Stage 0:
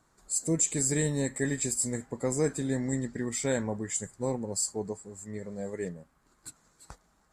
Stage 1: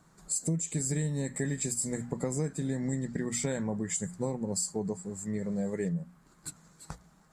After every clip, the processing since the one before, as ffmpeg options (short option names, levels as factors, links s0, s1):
-af "equalizer=f=170:t=o:w=0.46:g=14.5,bandreject=f=60:t=h:w=6,bandreject=f=120:t=h:w=6,bandreject=f=180:t=h:w=6,bandreject=f=240:t=h:w=6,acompressor=threshold=0.0251:ratio=6,volume=1.5"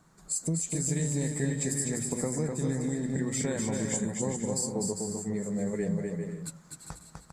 -af "aecho=1:1:250|400|490|544|576.4:0.631|0.398|0.251|0.158|0.1"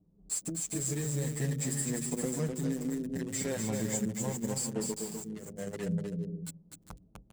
-filter_complex "[0:a]acrossover=split=500[s0][s1];[s1]acrusher=bits=5:mix=0:aa=0.5[s2];[s0][s2]amix=inputs=2:normalize=0,asplit=2[s3][s4];[s4]adelay=7.5,afreqshift=0.3[s5];[s3][s5]amix=inputs=2:normalize=1"